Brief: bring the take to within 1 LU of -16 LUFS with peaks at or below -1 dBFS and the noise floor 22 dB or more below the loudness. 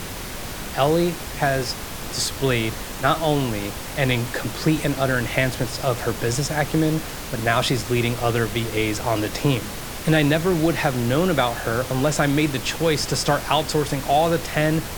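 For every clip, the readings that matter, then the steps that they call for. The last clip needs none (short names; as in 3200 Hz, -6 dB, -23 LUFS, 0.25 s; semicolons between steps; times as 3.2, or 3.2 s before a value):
noise floor -32 dBFS; noise floor target -44 dBFS; loudness -22.0 LUFS; peak -4.5 dBFS; loudness target -16.0 LUFS
-> noise print and reduce 12 dB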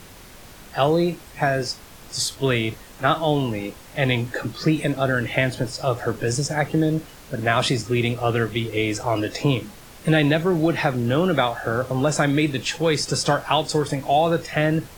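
noise floor -44 dBFS; noise floor target -45 dBFS
-> noise print and reduce 6 dB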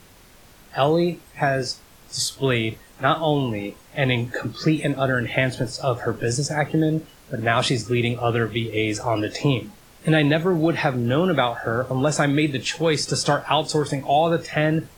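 noise floor -50 dBFS; loudness -22.5 LUFS; peak -5.0 dBFS; loudness target -16.0 LUFS
-> gain +6.5 dB; limiter -1 dBFS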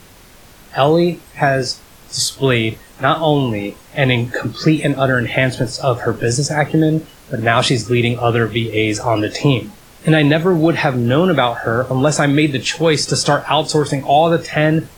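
loudness -16.0 LUFS; peak -1.0 dBFS; noise floor -44 dBFS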